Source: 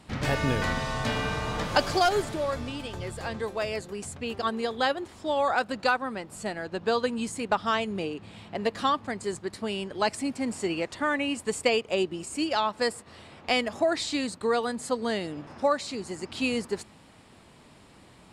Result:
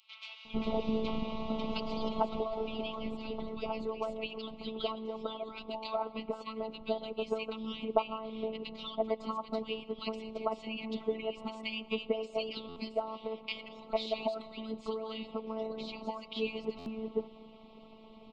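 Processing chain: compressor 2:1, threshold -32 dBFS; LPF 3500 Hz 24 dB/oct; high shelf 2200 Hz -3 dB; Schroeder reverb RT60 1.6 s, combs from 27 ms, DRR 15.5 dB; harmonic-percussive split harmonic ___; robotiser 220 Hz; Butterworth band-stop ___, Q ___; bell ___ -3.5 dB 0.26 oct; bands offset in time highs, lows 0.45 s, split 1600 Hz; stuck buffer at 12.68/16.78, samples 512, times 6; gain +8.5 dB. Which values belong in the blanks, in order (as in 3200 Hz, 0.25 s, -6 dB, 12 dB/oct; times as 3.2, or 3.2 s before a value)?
-15 dB, 1700 Hz, 1.4, 950 Hz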